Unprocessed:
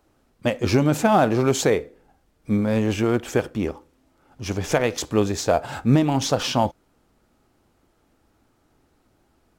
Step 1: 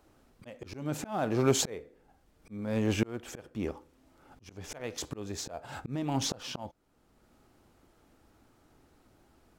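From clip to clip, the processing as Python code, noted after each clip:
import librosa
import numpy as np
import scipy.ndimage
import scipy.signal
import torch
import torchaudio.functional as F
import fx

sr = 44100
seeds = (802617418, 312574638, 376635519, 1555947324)

y = fx.auto_swell(x, sr, attack_ms=786.0)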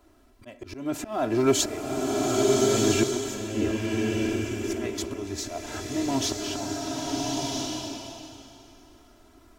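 y = x + 0.88 * np.pad(x, (int(3.0 * sr / 1000.0), 0))[:len(x)]
y = fx.rev_bloom(y, sr, seeds[0], attack_ms=1310, drr_db=-2.0)
y = F.gain(torch.from_numpy(y), 1.5).numpy()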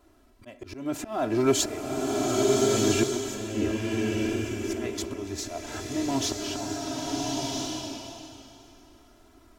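y = fx.wow_flutter(x, sr, seeds[1], rate_hz=2.1, depth_cents=19.0)
y = F.gain(torch.from_numpy(y), -1.0).numpy()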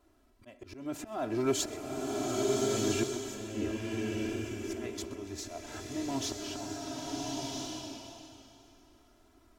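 y = x + 10.0 ** (-20.5 / 20.0) * np.pad(x, (int(127 * sr / 1000.0), 0))[:len(x)]
y = F.gain(torch.from_numpy(y), -7.0).numpy()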